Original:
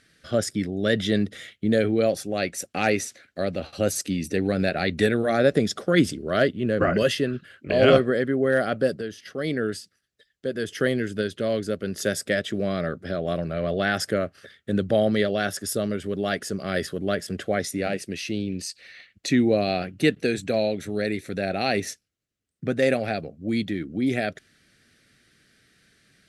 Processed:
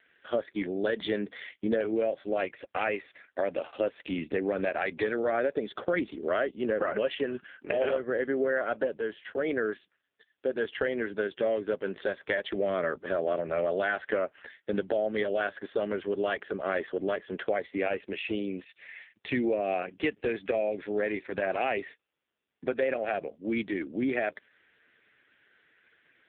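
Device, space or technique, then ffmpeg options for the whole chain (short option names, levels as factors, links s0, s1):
voicemail: -filter_complex "[0:a]asplit=3[s0][s1][s2];[s0]afade=t=out:st=14.01:d=0.02[s3];[s1]adynamicequalizer=threshold=0.00501:dfrequency=2400:dqfactor=1.6:tfrequency=2400:tqfactor=1.6:attack=5:release=100:ratio=0.375:range=1.5:mode=boostabove:tftype=bell,afade=t=in:st=14.01:d=0.02,afade=t=out:st=14.87:d=0.02[s4];[s2]afade=t=in:st=14.87:d=0.02[s5];[s3][s4][s5]amix=inputs=3:normalize=0,highpass=400,lowpass=3300,acompressor=threshold=0.0398:ratio=8,volume=1.68" -ar 8000 -c:a libopencore_amrnb -b:a 5150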